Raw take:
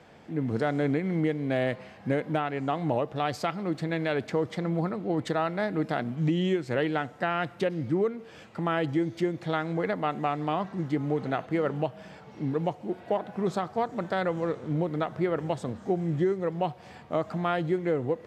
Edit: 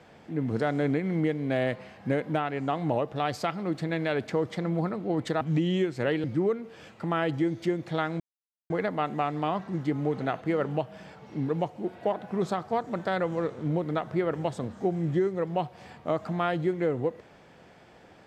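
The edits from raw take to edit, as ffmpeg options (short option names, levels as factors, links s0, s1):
-filter_complex "[0:a]asplit=4[s0][s1][s2][s3];[s0]atrim=end=5.412[s4];[s1]atrim=start=6.118:end=6.952[s5];[s2]atrim=start=7.788:end=9.75,asetpts=PTS-STARTPTS,afade=t=out:st=1.958:d=0.004:c=hsin,apad=pad_dur=0.5[s6];[s3]atrim=start=9.75,asetpts=PTS-STARTPTS,afade=t=in:d=0.004:c=hsin[s7];[s4][s5]acrossfade=d=0.004:c1=hsin:c2=hsin[s8];[s6][s7]concat=n=2:v=0:a=1[s9];[s8][s9]acrossfade=d=0.004:c1=hsin:c2=hsin"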